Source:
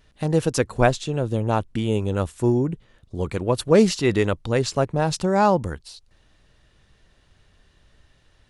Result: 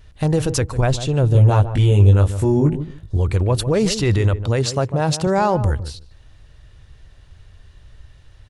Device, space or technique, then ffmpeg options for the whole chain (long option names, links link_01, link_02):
car stereo with a boomy subwoofer: -filter_complex "[0:a]asettb=1/sr,asplit=3[link_01][link_02][link_03];[link_01]atrim=end=4.454[link_04];[link_02]atrim=start=4.45:end=5.27,asetpts=PTS-STARTPTS,afade=type=in:duration=0.004:curve=qsin,afade=type=out:start_time=0.816:duration=0.004:curve=qsin,highpass=120[link_05];[link_03]atrim=start=5.266[link_06];[link_04][link_05]acrossfade=duration=0.004:curve1=hsin:curve2=qsin[link_07];[link_07][link_06]acrossfade=duration=0.004:curve1=qsin:curve2=hsin,lowshelf=frequency=140:width_type=q:width=1.5:gain=8.5,alimiter=limit=-14dB:level=0:latency=1:release=30,asettb=1/sr,asplit=3[link_08][link_09][link_10];[link_08]atrim=end=1.334[link_11];[link_09]atrim=start=1.33:end=3.17,asetpts=PTS-STARTPTS,afade=type=in:duration=0.004:curve=qsin,afade=type=out:start_time=1.836:duration=0.004:curve=qsin,asplit=2[link_12][link_13];[link_13]adelay=20,volume=-2dB[link_14];[link_12][link_14]amix=inputs=2:normalize=0,atrim=end_sample=81144[link_15];[link_10]atrim=start=3.166[link_16];[link_11][link_15]acrossfade=duration=0.004:curve1=hsin:curve2=qsin[link_17];[link_17][link_16]acrossfade=duration=0.004:curve1=qsin:curve2=hsin,asplit=2[link_18][link_19];[link_19]adelay=149,lowpass=frequency=870:poles=1,volume=-10.5dB,asplit=2[link_20][link_21];[link_21]adelay=149,lowpass=frequency=870:poles=1,volume=0.18[link_22];[link_18][link_20][link_22]amix=inputs=3:normalize=0,volume=4.5dB"